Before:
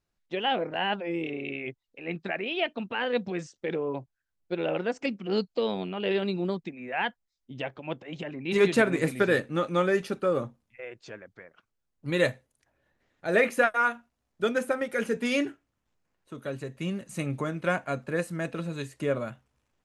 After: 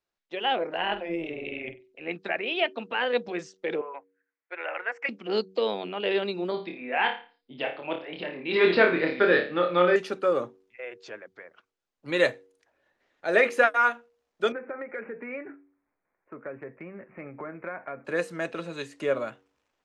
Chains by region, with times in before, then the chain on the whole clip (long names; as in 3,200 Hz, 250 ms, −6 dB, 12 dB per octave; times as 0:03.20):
0:00.76–0:02.08: parametric band 85 Hz +15 dB 1.7 octaves + amplitude modulation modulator 160 Hz, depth 55% + flutter between parallel walls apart 8.1 metres, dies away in 0.25 s
0:03.81–0:05.09: high-pass filter 970 Hz + high shelf with overshoot 2,800 Hz −11.5 dB, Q 3
0:06.51–0:09.96: Butterworth low-pass 5,000 Hz 96 dB per octave + flutter between parallel walls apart 4.8 metres, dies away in 0.36 s
0:14.52–0:18.05: Butterworth low-pass 2,400 Hz 96 dB per octave + downward compressor 5 to 1, threshold −34 dBFS
whole clip: three-way crossover with the lows and the highs turned down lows −15 dB, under 290 Hz, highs −14 dB, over 7,100 Hz; hum removal 94.79 Hz, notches 5; automatic gain control gain up to 4.5 dB; level −1.5 dB